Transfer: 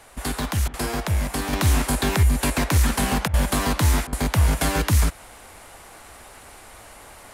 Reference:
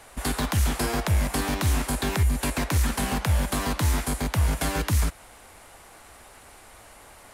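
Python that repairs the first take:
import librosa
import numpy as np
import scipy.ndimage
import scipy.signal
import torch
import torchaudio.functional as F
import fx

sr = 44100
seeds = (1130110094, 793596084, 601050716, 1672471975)

y = fx.fix_interpolate(x, sr, at_s=(0.68, 3.28, 4.07), length_ms=56.0)
y = fx.gain(y, sr, db=fx.steps((0.0, 0.0), (1.53, -4.5)))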